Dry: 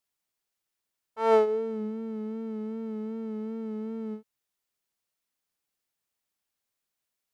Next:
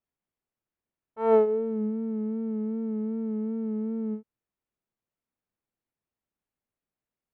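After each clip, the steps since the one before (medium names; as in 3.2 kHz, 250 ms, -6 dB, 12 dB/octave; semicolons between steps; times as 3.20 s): FFT filter 230 Hz 0 dB, 2.5 kHz -13 dB, 4.7 kHz -24 dB; trim +5 dB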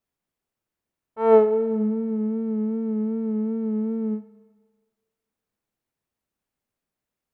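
Schroeder reverb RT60 1.6 s, combs from 26 ms, DRR 14.5 dB; trim +5 dB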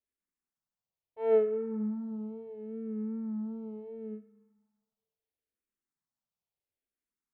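barber-pole phaser -0.73 Hz; trim -9 dB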